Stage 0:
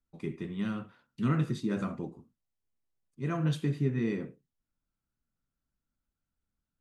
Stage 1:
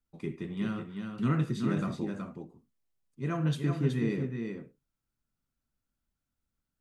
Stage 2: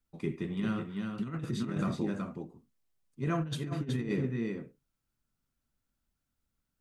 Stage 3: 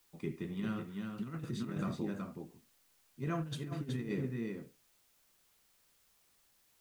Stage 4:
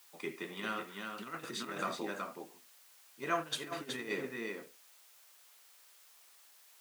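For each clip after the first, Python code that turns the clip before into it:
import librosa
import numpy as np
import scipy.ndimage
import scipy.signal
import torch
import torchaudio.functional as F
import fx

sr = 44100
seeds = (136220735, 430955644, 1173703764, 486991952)

y1 = x + 10.0 ** (-5.5 / 20.0) * np.pad(x, (int(373 * sr / 1000.0), 0))[:len(x)]
y2 = fx.over_compress(y1, sr, threshold_db=-31.0, ratio=-0.5)
y3 = fx.dmg_noise_colour(y2, sr, seeds[0], colour='white', level_db=-66.0)
y3 = F.gain(torch.from_numpy(y3), -5.0).numpy()
y4 = scipy.signal.sosfilt(scipy.signal.butter(2, 620.0, 'highpass', fs=sr, output='sos'), y3)
y4 = F.gain(torch.from_numpy(y4), 9.5).numpy()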